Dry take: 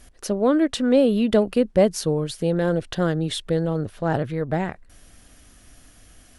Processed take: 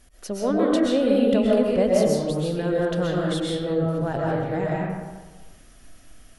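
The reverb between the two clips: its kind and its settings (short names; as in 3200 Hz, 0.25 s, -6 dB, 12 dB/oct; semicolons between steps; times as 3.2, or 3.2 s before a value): digital reverb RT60 1.3 s, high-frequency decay 0.5×, pre-delay 90 ms, DRR -4 dB; gain -6 dB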